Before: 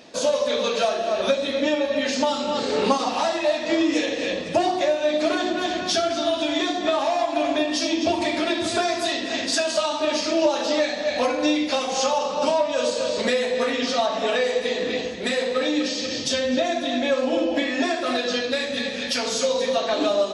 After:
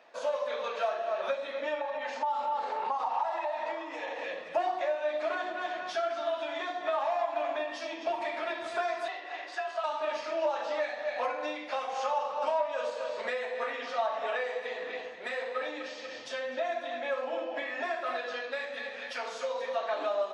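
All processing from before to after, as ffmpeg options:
-filter_complex "[0:a]asettb=1/sr,asplit=3[s0][s1][s2];[s0]atrim=end=1.814[s3];[s1]atrim=start=1.81:end=4.24,asetpts=PTS-STARTPTS,afade=t=in:d=0.004:c=qsin,afade=t=out:st=2.426:d=0.004:c=qsin,equalizer=f=890:t=o:w=0.45:g=13,acompressor=threshold=0.0891:ratio=5:attack=3.2:release=140:knee=1:detection=peak[s4];[s2]atrim=start=4.236[s5];[s3][s4]acrossfade=d=0.004:c1=hsin:c2=qsin[s6];[s6][s5]acrossfade=d=0.004:c1=qsin:c2=hsin,asettb=1/sr,asplit=3[s7][s8][s9];[s7]atrim=end=9.084[s10];[s8]atrim=start=9.08:end=9.84,asetpts=PTS-STARTPTS,afade=t=in:d=0.004:c=qsin,afade=t=out:st=0.756:d=0.004:c=qsin,highpass=f=820:p=1,aemphasis=mode=reproduction:type=bsi,afreqshift=51[s11];[s9]atrim=start=9.836[s12];[s10][s11]acrossfade=d=0.004:c1=hsin:c2=qsin[s13];[s13][s12]acrossfade=d=0.004:c1=qsin:c2=hsin,highpass=61,acrossover=split=590 2200:gain=0.0631 1 0.112[s14][s15][s16];[s14][s15][s16]amix=inputs=3:normalize=0,volume=0.631"

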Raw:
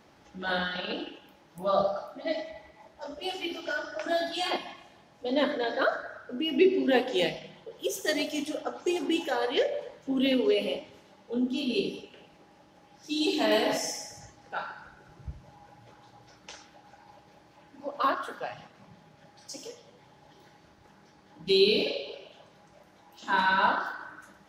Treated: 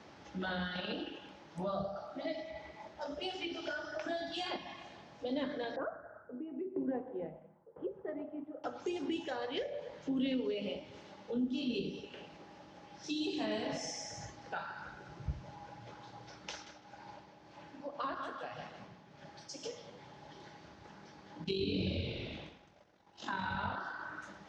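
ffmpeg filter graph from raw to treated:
-filter_complex "[0:a]asettb=1/sr,asplit=3[s0][s1][s2];[s0]atrim=end=5.764[s3];[s1]atrim=start=5.76:end=8.64,asetpts=PTS-STARTPTS,afade=t=in:d=0.004:c=qsin,afade=t=out:st=2.876:d=0.004:c=qsin,lowpass=f=1300:w=0.5412,lowpass=f=1300:w=1.3066,aeval=exprs='val(0)*pow(10,-20*if(lt(mod(1*n/s,1),2*abs(1)/1000),1-mod(1*n/s,1)/(2*abs(1)/1000),(mod(1*n/s,1)-2*abs(1)/1000)/(1-2*abs(1)/1000))/20)':c=same[s4];[s2]atrim=start=8.636[s5];[s3][s4]acrossfade=d=0.004:c1=hsin:c2=qsin[s6];[s6][s5]acrossfade=d=0.004:c1=qsin:c2=hsin,asettb=1/sr,asplit=3[s7][s8][s9];[s7]atrim=end=16.514[s10];[s8]atrim=start=16.51:end=19.64,asetpts=PTS-STARTPTS,afade=t=in:d=0.004:c=qsin,afade=t=out:st=3.126:d=0.004:c=qsin,tremolo=f=1.8:d=0.61,asplit=2[s11][s12];[s12]adelay=154,lowpass=f=5000:p=1,volume=0.376,asplit=2[s13][s14];[s14]adelay=154,lowpass=f=5000:p=1,volume=0.24,asplit=2[s15][s16];[s16]adelay=154,lowpass=f=5000:p=1,volume=0.24[s17];[s11][s13][s15][s17]amix=inputs=4:normalize=0,atrim=end_sample=138033[s18];[s9]atrim=start=19.636[s19];[s10][s18]acrossfade=d=0.004:c1=hsin:c2=qsin[s20];[s20][s19]acrossfade=d=0.004:c1=qsin:c2=hsin,asettb=1/sr,asplit=3[s21][s22][s23];[s21]atrim=end=21.444[s24];[s22]atrim=start=21.44:end=23.75,asetpts=PTS-STARTPTS,afade=t=in:d=0.004:c=qsin,afade=t=out:st=2.306:d=0.004:c=qsin,tremolo=f=46:d=0.571,asplit=8[s25][s26][s27][s28][s29][s30][s31][s32];[s26]adelay=120,afreqshift=-100,volume=0.473[s33];[s27]adelay=240,afreqshift=-200,volume=0.251[s34];[s28]adelay=360,afreqshift=-300,volume=0.133[s35];[s29]adelay=480,afreqshift=-400,volume=0.0708[s36];[s30]adelay=600,afreqshift=-500,volume=0.0372[s37];[s31]adelay=720,afreqshift=-600,volume=0.0197[s38];[s32]adelay=840,afreqshift=-700,volume=0.0105[s39];[s25][s33][s34][s35][s36][s37][s38][s39]amix=inputs=8:normalize=0,atrim=end_sample=101871,agate=range=0.0224:threshold=0.00282:ratio=3:release=100:detection=peak[s40];[s23]atrim=start=23.746[s41];[s24][s40]acrossfade=d=0.004:c1=hsin:c2=qsin[s42];[s42][s41]acrossfade=d=0.004:c1=qsin:c2=hsin,lowpass=f=6600:w=0.5412,lowpass=f=6600:w=1.3066,acrossover=split=170[s43][s44];[s44]acompressor=threshold=0.00794:ratio=4[s45];[s43][s45]amix=inputs=2:normalize=0,highpass=56,volume=1.41"

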